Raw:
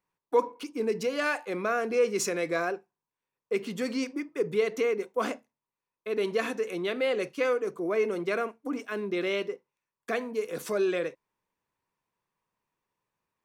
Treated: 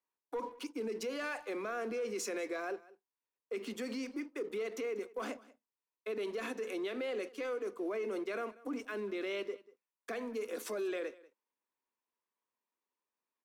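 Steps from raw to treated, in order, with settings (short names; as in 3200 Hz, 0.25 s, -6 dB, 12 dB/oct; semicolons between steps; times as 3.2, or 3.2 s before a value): steep high-pass 210 Hz 72 dB/oct; sample leveller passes 1; limiter -23.5 dBFS, peak gain reduction 11 dB; on a send: echo 0.19 s -21 dB; on the sum: gain -7.5 dB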